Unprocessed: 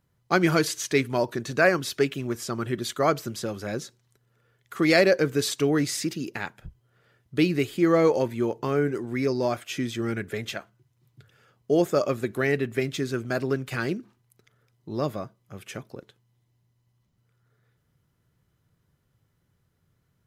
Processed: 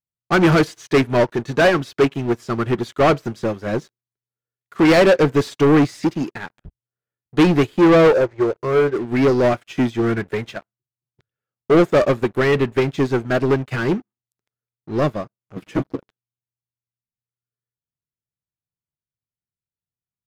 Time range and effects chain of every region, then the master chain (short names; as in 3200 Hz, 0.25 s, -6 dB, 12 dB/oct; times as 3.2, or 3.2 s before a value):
8.13–8.96 steep low-pass 6500 Hz + low shelf 76 Hz -6 dB + fixed phaser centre 820 Hz, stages 6
15.56–15.97 bell 270 Hz +15 dB 0.68 oct + notches 50/100/150/200 Hz + comb 6.3 ms, depth 93%
whole clip: sample leveller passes 5; LPF 2600 Hz 6 dB/oct; upward expander 2.5:1, over -22 dBFS